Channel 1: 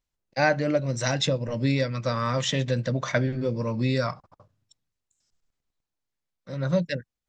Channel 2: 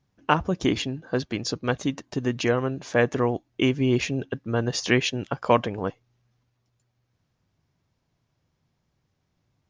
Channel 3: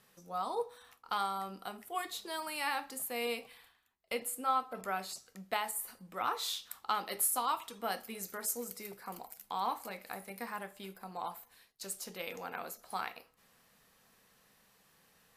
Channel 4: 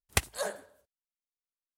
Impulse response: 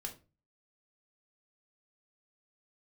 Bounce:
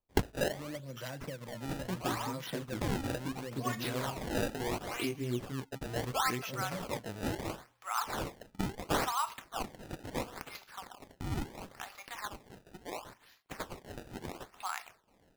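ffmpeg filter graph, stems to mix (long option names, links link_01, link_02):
-filter_complex "[0:a]acrossover=split=190|2700[link_01][link_02][link_03];[link_01]acompressor=threshold=-40dB:ratio=4[link_04];[link_02]acompressor=threshold=-32dB:ratio=4[link_05];[link_03]acompressor=threshold=-38dB:ratio=4[link_06];[link_04][link_05][link_06]amix=inputs=3:normalize=0,volume=-9.5dB[link_07];[1:a]lowpass=3200,alimiter=limit=-14.5dB:level=0:latency=1:release=150,flanger=delay=15:depth=4.2:speed=0.45,adelay=1400,volume=-9dB[link_08];[2:a]highpass=frequency=810:width=0.5412,highpass=frequency=810:width=1.3066,adelay=1700,volume=1dB[link_09];[3:a]flanger=delay=15.5:depth=4.8:speed=2.8,volume=2.5dB[link_10];[link_07][link_08][link_09][link_10]amix=inputs=4:normalize=0,acrusher=samples=23:mix=1:aa=0.000001:lfo=1:lforange=36.8:lforate=0.73"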